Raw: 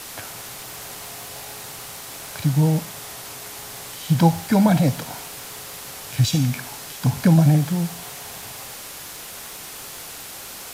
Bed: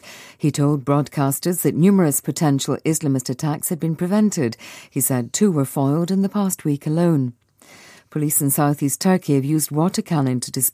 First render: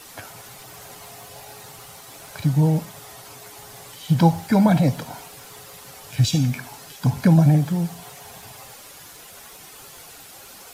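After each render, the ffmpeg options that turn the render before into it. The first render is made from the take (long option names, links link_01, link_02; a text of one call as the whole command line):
ffmpeg -i in.wav -af "afftdn=noise_reduction=9:noise_floor=-37" out.wav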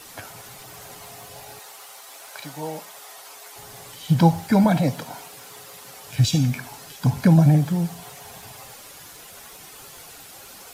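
ffmpeg -i in.wav -filter_complex "[0:a]asettb=1/sr,asplit=3[link_01][link_02][link_03];[link_01]atrim=end=1.594[link_04];[link_02]atrim=start=1.59:end=3.56,asetpts=PTS-STARTPTS,afade=type=in:duration=0.004:curve=qsin,afade=type=out:start_time=1.966:duration=0.004:curve=qsin,highpass=560[link_05];[link_03]atrim=start=3.556[link_06];[link_04][link_05]acrossfade=duration=0.004:curve1=hsin:curve2=qsin[link_07];[link_07][link_06]acrossfade=duration=0.004:curve1=qsin:curve2=hsin,asettb=1/sr,asplit=3[link_08][link_09][link_10];[link_08]atrim=end=4.644[link_11];[link_09]atrim=start=4.64:end=6.08,asetpts=PTS-STARTPTS,afade=type=in:duration=0.004:curve=qsin,afade=type=out:start_time=1.436:duration=0.004:curve=qsin,highpass=frequency=180:poles=1[link_12];[link_10]atrim=start=6.076[link_13];[link_11][link_12]acrossfade=duration=0.004:curve1=hsin:curve2=qsin[link_14];[link_14][link_13]acrossfade=duration=0.004:curve1=qsin:curve2=hsin" out.wav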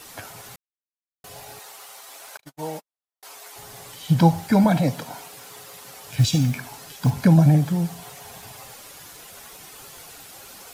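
ffmpeg -i in.wav -filter_complex "[0:a]asettb=1/sr,asplit=3[link_01][link_02][link_03];[link_01]atrim=end=2.374[link_04];[link_02]atrim=start=2.37:end=3.23,asetpts=PTS-STARTPTS,afade=type=in:duration=0.004:curve=qsin,afade=type=out:start_time=0.856:duration=0.004:curve=qsin,agate=range=-58dB:threshold=-35dB:ratio=16:release=100:detection=peak[link_05];[link_03]atrim=start=3.226[link_06];[link_04][link_05]acrossfade=duration=0.004:curve1=hsin:curve2=qsin[link_07];[link_07][link_06]acrossfade=duration=0.004:curve1=qsin:curve2=hsin,asettb=1/sr,asplit=3[link_08][link_09][link_10];[link_08]atrim=end=5.384[link_11];[link_09]atrim=start=5.38:end=7.11,asetpts=PTS-STARTPTS,afade=type=in:duration=0.004:curve=qsin,afade=type=out:start_time=1.726:duration=0.004:curve=qsin,acrusher=bits=7:mode=log:mix=0:aa=0.000001[link_12];[link_10]atrim=start=7.106[link_13];[link_11][link_12]acrossfade=duration=0.004:curve1=hsin:curve2=qsin[link_14];[link_14][link_13]acrossfade=duration=0.004:curve1=qsin:curve2=hsin,asplit=3[link_15][link_16][link_17];[link_15]atrim=end=0.56,asetpts=PTS-STARTPTS,afade=type=out:start_time=0.556:duration=0.004:curve=hsin[link_18];[link_16]atrim=start=0.56:end=1.24,asetpts=PTS-STARTPTS,volume=0[link_19];[link_17]atrim=start=1.24,asetpts=PTS-STARTPTS,afade=type=in:duration=0.004:curve=hsin[link_20];[link_18][link_19][link_20]concat=n=3:v=0:a=1" out.wav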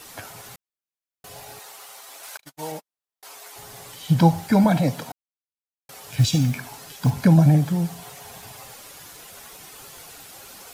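ffmpeg -i in.wav -filter_complex "[0:a]asettb=1/sr,asplit=3[link_01][link_02][link_03];[link_01]atrim=end=2.234[link_04];[link_02]atrim=start=2.23:end=2.72,asetpts=PTS-STARTPTS,afade=type=in:duration=0.004:curve=qsin,afade=type=out:start_time=0.486:duration=0.004:curve=qsin,tiltshelf=frequency=970:gain=-4[link_05];[link_03]atrim=start=2.716[link_06];[link_04][link_05]acrossfade=duration=0.004:curve1=hsin:curve2=qsin[link_07];[link_07][link_06]acrossfade=duration=0.004:curve1=qsin:curve2=hsin,asplit=3[link_08][link_09][link_10];[link_08]atrim=end=5.12,asetpts=PTS-STARTPTS,afade=type=out:start_time=5.116:duration=0.004:curve=hsin[link_11];[link_09]atrim=start=5.12:end=5.89,asetpts=PTS-STARTPTS,volume=0[link_12];[link_10]atrim=start=5.89,asetpts=PTS-STARTPTS,afade=type=in:duration=0.004:curve=hsin[link_13];[link_11][link_12][link_13]concat=n=3:v=0:a=1" out.wav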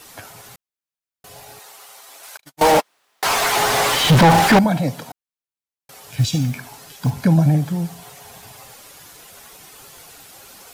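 ffmpeg -i in.wav -filter_complex "[0:a]asettb=1/sr,asplit=3[link_01][link_02][link_03];[link_01]atrim=end=2.614[link_04];[link_02]atrim=start=2.61:end=4.59,asetpts=PTS-STARTPTS,afade=type=in:duration=0.004:curve=qsin,afade=type=out:start_time=1.976:duration=0.004:curve=qsin,asplit=2[link_05][link_06];[link_06]highpass=frequency=720:poles=1,volume=43dB,asoftclip=type=tanh:threshold=-3.5dB[link_07];[link_05][link_07]amix=inputs=2:normalize=0,lowpass=frequency=2000:poles=1,volume=-6dB[link_08];[link_03]atrim=start=4.586[link_09];[link_04][link_08]acrossfade=duration=0.004:curve1=hsin:curve2=qsin[link_10];[link_10][link_09]acrossfade=duration=0.004:curve1=qsin:curve2=hsin" out.wav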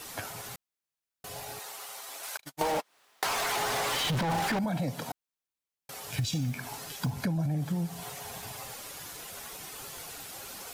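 ffmpeg -i in.wav -af "alimiter=limit=-14.5dB:level=0:latency=1:release=18,acompressor=threshold=-28dB:ratio=6" out.wav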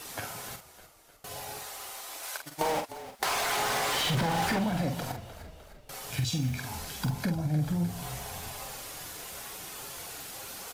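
ffmpeg -i in.wav -filter_complex "[0:a]asplit=2[link_01][link_02];[link_02]adelay=46,volume=-6.5dB[link_03];[link_01][link_03]amix=inputs=2:normalize=0,asplit=7[link_04][link_05][link_06][link_07][link_08][link_09][link_10];[link_05]adelay=304,afreqshift=-46,volume=-14dB[link_11];[link_06]adelay=608,afreqshift=-92,volume=-19.2dB[link_12];[link_07]adelay=912,afreqshift=-138,volume=-24.4dB[link_13];[link_08]adelay=1216,afreqshift=-184,volume=-29.6dB[link_14];[link_09]adelay=1520,afreqshift=-230,volume=-34.8dB[link_15];[link_10]adelay=1824,afreqshift=-276,volume=-40dB[link_16];[link_04][link_11][link_12][link_13][link_14][link_15][link_16]amix=inputs=7:normalize=0" out.wav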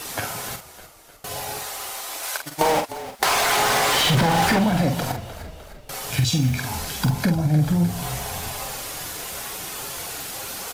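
ffmpeg -i in.wav -af "volume=9.5dB" out.wav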